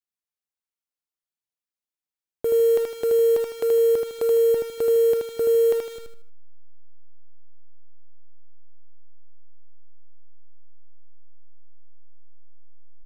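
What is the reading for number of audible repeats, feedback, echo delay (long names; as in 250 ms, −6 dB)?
4, 34%, 78 ms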